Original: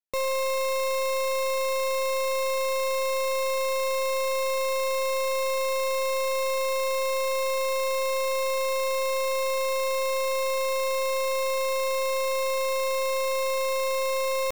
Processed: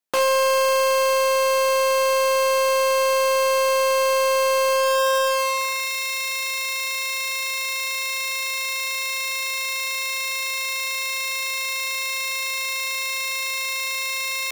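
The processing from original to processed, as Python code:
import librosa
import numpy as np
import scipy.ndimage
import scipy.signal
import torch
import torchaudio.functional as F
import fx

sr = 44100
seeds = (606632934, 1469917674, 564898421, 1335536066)

y = fx.hum_notches(x, sr, base_hz=60, count=9)
y = fx.rider(y, sr, range_db=10, speed_s=2.0)
y = fx.filter_sweep_highpass(y, sr, from_hz=190.0, to_hz=2100.0, start_s=4.68, end_s=5.9, q=1.1)
y = fx.doppler_dist(y, sr, depth_ms=0.49)
y = y * librosa.db_to_amplitude(7.5)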